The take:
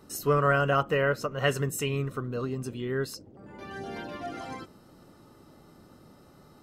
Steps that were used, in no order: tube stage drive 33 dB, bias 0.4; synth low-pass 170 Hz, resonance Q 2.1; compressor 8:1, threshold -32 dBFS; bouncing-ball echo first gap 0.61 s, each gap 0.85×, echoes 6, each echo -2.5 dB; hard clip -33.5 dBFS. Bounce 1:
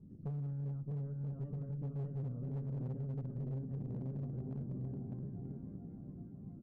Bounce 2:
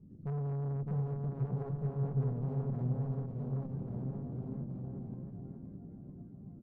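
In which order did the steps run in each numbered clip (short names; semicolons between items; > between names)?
bouncing-ball echo > compressor > synth low-pass > hard clip > tube stage; synth low-pass > tube stage > compressor > hard clip > bouncing-ball echo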